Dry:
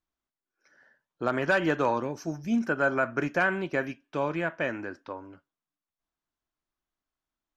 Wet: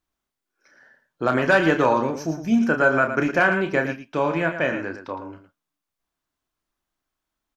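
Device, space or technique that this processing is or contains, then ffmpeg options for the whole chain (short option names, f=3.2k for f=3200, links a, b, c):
slapback doubling: -filter_complex "[0:a]asplit=3[a][b][c];[b]adelay=31,volume=-7.5dB[d];[c]adelay=112,volume=-9.5dB[e];[a][d][e]amix=inputs=3:normalize=0,volume=6dB"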